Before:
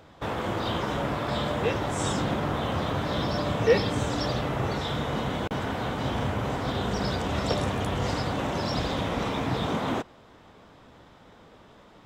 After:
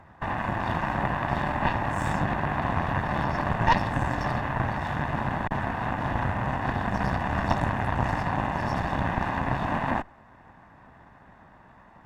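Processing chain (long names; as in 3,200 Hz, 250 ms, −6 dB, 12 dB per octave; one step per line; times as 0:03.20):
lower of the sound and its delayed copy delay 1.1 ms
high shelf with overshoot 2,500 Hz −12.5 dB, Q 1.5
harmonic generator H 4 −11 dB, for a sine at −11.5 dBFS
level +1.5 dB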